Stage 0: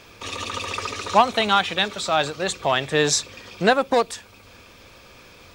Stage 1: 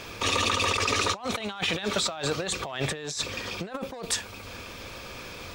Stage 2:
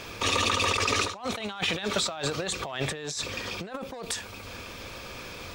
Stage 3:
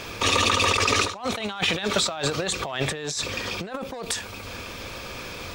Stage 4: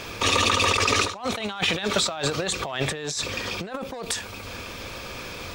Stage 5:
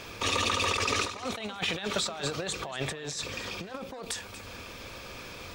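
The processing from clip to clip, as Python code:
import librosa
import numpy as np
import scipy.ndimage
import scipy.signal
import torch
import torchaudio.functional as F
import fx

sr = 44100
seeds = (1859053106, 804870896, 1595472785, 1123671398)

y1 = fx.over_compress(x, sr, threshold_db=-31.0, ratio=-1.0)
y2 = fx.end_taper(y1, sr, db_per_s=110.0)
y3 = fx.end_taper(y2, sr, db_per_s=120.0)
y3 = y3 * librosa.db_to_amplitude(4.5)
y4 = y3
y5 = y4 + 10.0 ** (-15.0 / 20.0) * np.pad(y4, (int(236 * sr / 1000.0), 0))[:len(y4)]
y5 = y5 * librosa.db_to_amplitude(-7.0)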